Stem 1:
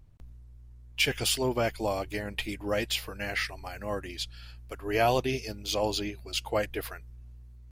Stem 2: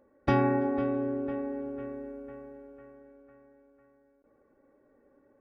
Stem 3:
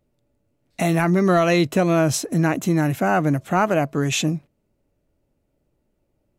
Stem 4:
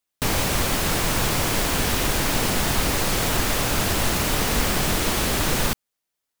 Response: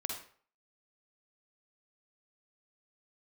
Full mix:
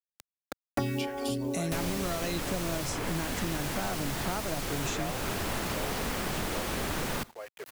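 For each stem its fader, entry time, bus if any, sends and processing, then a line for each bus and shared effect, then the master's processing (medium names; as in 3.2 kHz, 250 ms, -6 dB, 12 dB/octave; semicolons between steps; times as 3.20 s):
-16.0 dB, 0.00 s, no send, echo send -9.5 dB, elliptic high-pass 390 Hz
-3.0 dB, 0.50 s, no send, no echo send, lamp-driven phase shifter 2 Hz
-17.0 dB, 0.75 s, no send, no echo send, high-order bell 6.5 kHz +9 dB
-14.0 dB, 1.50 s, send -21 dB, no echo send, none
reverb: on, RT60 0.50 s, pre-delay 44 ms
echo: delay 832 ms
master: bit crusher 10-bit; three bands compressed up and down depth 100%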